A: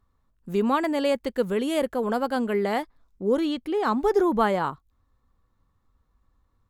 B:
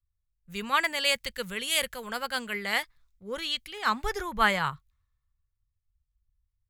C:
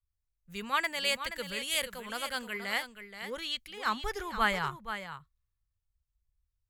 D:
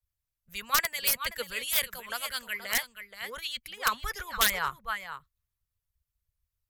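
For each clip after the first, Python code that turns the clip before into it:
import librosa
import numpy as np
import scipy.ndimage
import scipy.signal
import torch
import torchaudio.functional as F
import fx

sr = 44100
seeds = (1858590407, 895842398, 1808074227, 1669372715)

y1 = fx.curve_eq(x, sr, hz=(150.0, 290.0, 510.0, 750.0, 2100.0), db=(0, -20, -10, -10, 8))
y1 = fx.band_widen(y1, sr, depth_pct=70)
y2 = y1 + 10.0 ** (-10.0 / 20.0) * np.pad(y1, (int(476 * sr / 1000.0), 0))[:len(y1)]
y2 = y2 * librosa.db_to_amplitude(-4.5)
y3 = (np.mod(10.0 ** (18.0 / 20.0) * y2 + 1.0, 2.0) - 1.0) / 10.0 ** (18.0 / 20.0)
y3 = fx.hpss(y3, sr, part='harmonic', gain_db=-15)
y3 = fx.graphic_eq_31(y3, sr, hz=(315, 800, 12500), db=(-11, -4, 9))
y3 = y3 * librosa.db_to_amplitude(5.5)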